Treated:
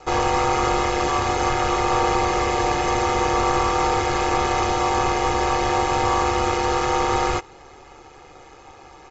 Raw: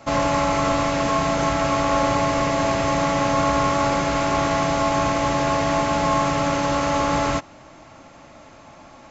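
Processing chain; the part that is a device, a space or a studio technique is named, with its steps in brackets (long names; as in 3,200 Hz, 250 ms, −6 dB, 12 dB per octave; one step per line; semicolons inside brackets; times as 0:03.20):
ring-modulated robot voice (ring modulation 71 Hz; comb filter 2.4 ms, depth 77%)
level +1.5 dB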